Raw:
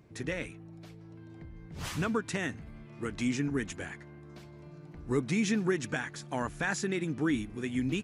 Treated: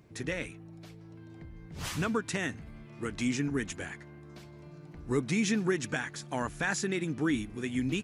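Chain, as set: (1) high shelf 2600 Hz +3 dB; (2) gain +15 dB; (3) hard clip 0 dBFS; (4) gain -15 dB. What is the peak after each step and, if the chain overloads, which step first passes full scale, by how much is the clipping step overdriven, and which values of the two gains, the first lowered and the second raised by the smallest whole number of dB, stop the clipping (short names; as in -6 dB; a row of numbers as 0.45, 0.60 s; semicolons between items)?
-17.0, -2.0, -2.0, -17.0 dBFS; no overload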